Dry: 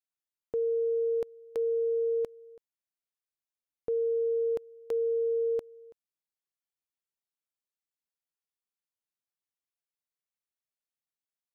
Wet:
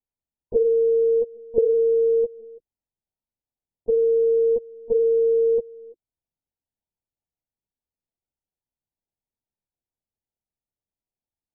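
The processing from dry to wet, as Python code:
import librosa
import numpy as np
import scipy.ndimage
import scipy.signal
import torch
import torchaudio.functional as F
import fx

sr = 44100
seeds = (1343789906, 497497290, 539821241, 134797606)

y = fx.graphic_eq_31(x, sr, hz=(125, 315, 500), db=(-3, 11, 7))
y = fx.lpc_vocoder(y, sr, seeds[0], excitation='pitch_kept', order=8)
y = fx.brickwall_lowpass(y, sr, high_hz=1000.0)
y = F.gain(torch.from_numpy(y), 4.0).numpy()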